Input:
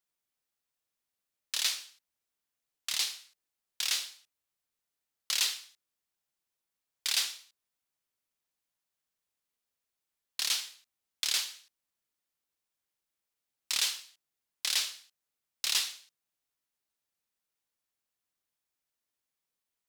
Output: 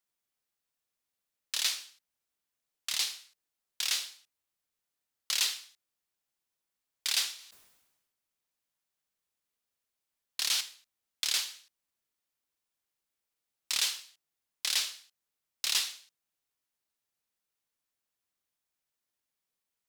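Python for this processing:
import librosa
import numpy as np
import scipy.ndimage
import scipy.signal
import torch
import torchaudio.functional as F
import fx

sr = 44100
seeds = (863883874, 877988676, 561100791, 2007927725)

y = fx.sustainer(x, sr, db_per_s=50.0, at=(7.35, 10.61))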